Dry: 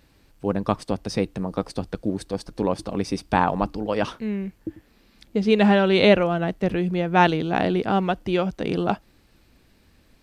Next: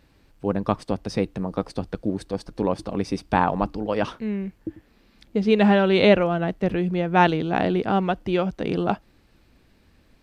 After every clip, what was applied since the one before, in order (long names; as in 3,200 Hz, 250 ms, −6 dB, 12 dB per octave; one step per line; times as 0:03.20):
high-shelf EQ 4,900 Hz −6.5 dB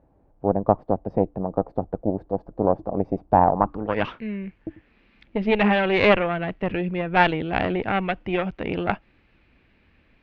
harmonic generator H 2 −7 dB, 6 −23 dB, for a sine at −3 dBFS
low-pass filter sweep 730 Hz → 2,500 Hz, 0:03.50–0:04.02
level −2.5 dB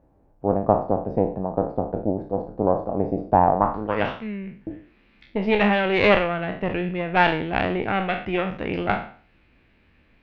peak hold with a decay on every bin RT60 0.45 s
level −1 dB